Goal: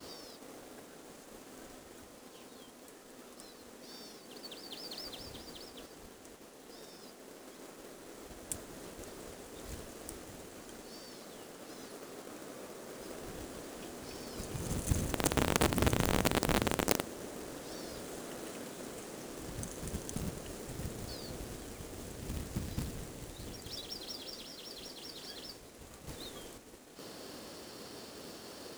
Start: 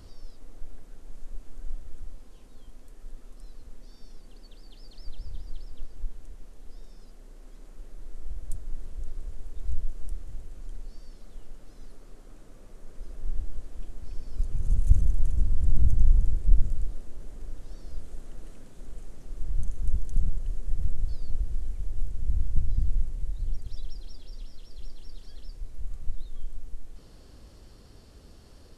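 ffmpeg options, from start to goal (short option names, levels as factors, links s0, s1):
-filter_complex "[0:a]asettb=1/sr,asplit=3[s0][s1][s2];[s0]atrim=end=15.114[s3];[s1]atrim=start=15.11:end=17.04,asetpts=PTS-STARTPTS,afade=t=in:d=0.004:c=qsin,afade=t=out:st=1.926:d=0.004:c=qsin,aeval=exprs='val(0)+0.5*0.0596*sgn(val(0))':c=same[s4];[s2]atrim=start=17.036[s5];[s3][s4]acrossfade=d=0.004:c1=hsin:c2=qsin[s6];[s6][s5]acrossfade=d=0.004:c1=qsin:c2=hsin,highpass=270,agate=range=0.0224:threshold=0.00141:ratio=3:detection=peak,asettb=1/sr,asplit=3[s7][s8][s9];[s7]atrim=end=26.074[s10];[s8]atrim=start=26.07:end=26.58,asetpts=PTS-STARTPTS,afade=t=in:d=0.004:c=qsin,afade=t=out:st=0.506:d=0.004:c=qsin,acontrast=29[s11];[s9]atrim=start=26.576[s12];[s10][s11]acrossfade=d=0.004:c1=hsin:c2=qsin[s13];[s13][s12]acrossfade=d=0.004:c1=qsin:c2=hsin,acrusher=bits=2:mode=log:mix=0:aa=0.000001,volume=3.76"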